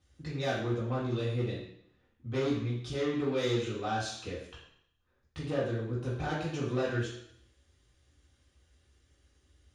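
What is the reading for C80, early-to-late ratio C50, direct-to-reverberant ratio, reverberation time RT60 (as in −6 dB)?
6.5 dB, 2.5 dB, −8.0 dB, 0.70 s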